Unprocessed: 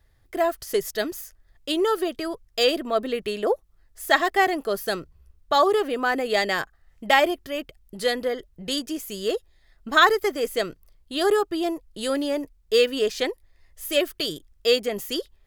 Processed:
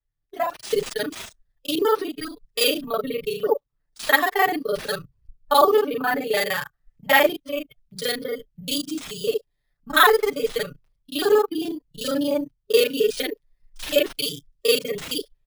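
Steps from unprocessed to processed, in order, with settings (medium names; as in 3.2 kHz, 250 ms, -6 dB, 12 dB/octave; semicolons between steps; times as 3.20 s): time reversed locally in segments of 33 ms; spectral noise reduction 16 dB; comb 6.9 ms, depth 78%; in parallel at +1.5 dB: compression 6:1, threshold -33 dBFS, peak gain reduction 20.5 dB; on the sum: sample-and-hold 3×; three bands expanded up and down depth 40%; trim -2.5 dB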